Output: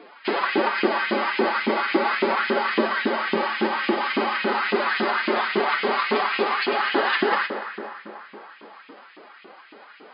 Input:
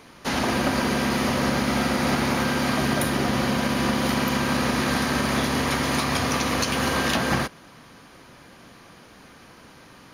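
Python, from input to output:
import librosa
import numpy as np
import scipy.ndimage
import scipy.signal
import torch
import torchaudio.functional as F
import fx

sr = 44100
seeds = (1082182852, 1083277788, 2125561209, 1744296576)

y = fx.bass_treble(x, sr, bass_db=9, treble_db=-9)
y = fx.pitch_keep_formants(y, sr, semitones=8.0)
y = fx.rev_plate(y, sr, seeds[0], rt60_s=3.6, hf_ratio=0.45, predelay_ms=95, drr_db=8.5)
y = fx.filter_lfo_highpass(y, sr, shape='saw_up', hz=3.6, low_hz=320.0, high_hz=2700.0, q=2.1)
y = fx.brickwall_bandpass(y, sr, low_hz=170.0, high_hz=5100.0)
y = y * librosa.db_to_amplitude(1.0)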